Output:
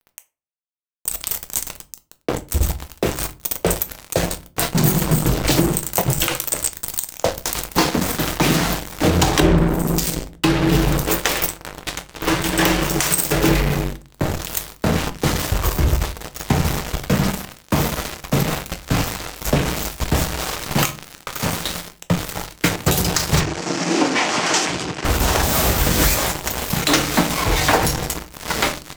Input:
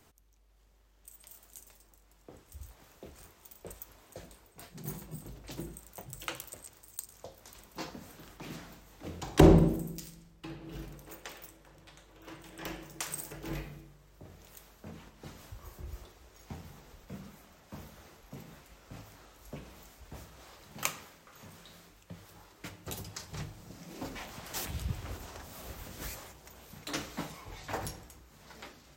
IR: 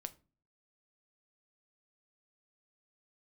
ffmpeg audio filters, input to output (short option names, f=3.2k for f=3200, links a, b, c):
-filter_complex "[0:a]acompressor=threshold=-43dB:ratio=10,acrusher=bits=7:mix=0:aa=0.5,asettb=1/sr,asplit=3[a][b][c];[a]atrim=end=23.404[d];[b]atrim=start=23.4:end=25.05,asetpts=PTS-STARTPTS,afade=t=in:d=0.004:c=qsin,afade=t=out:st=1.646:d=0.004:c=qsin,highpass=280,equalizer=f=320:t=q:w=4:g=4,equalizer=f=530:t=q:w=4:g=-3,equalizer=f=3.8k:t=q:w=4:g=-4,lowpass=f=7.2k:w=0.5412,lowpass=f=7.2k:w=1.3066[e];[c]atrim=start=25.046[f];[d][e]acrossfade=d=0.004:c1=hsin:c2=qsin[g];[g][f]acrossfade=d=0.004:c1=qsin:c2=hsin[h];[1:a]atrim=start_sample=2205[i];[h][i]afir=irnorm=-1:irlink=0,alimiter=level_in=35dB:limit=-1dB:release=50:level=0:latency=1,volume=-1dB"